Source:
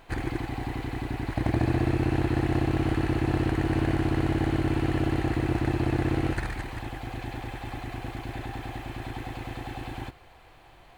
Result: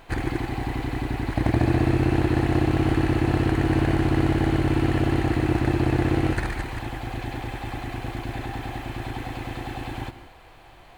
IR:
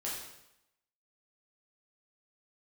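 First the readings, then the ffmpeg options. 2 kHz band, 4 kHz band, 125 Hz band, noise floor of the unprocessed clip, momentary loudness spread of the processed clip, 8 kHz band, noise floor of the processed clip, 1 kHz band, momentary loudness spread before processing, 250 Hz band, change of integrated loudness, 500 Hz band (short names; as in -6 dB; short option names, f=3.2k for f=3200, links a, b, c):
+4.0 dB, +4.0 dB, +4.0 dB, -53 dBFS, 11 LU, +4.0 dB, -48 dBFS, +4.0 dB, 11 LU, +4.0 dB, +4.0 dB, +4.5 dB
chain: -filter_complex "[0:a]asplit=2[a][b];[1:a]atrim=start_sample=2205,atrim=end_sample=3969,adelay=142[c];[b][c]afir=irnorm=-1:irlink=0,volume=-15dB[d];[a][d]amix=inputs=2:normalize=0,volume=4dB"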